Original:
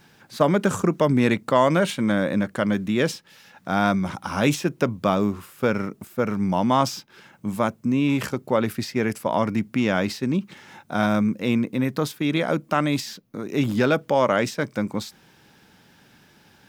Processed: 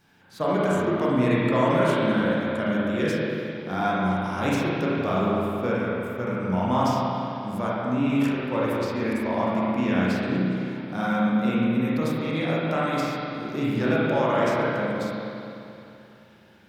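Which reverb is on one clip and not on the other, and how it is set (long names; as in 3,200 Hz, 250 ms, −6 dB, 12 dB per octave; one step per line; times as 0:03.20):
spring reverb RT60 2.8 s, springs 32/43 ms, chirp 30 ms, DRR −7.5 dB
level −9.5 dB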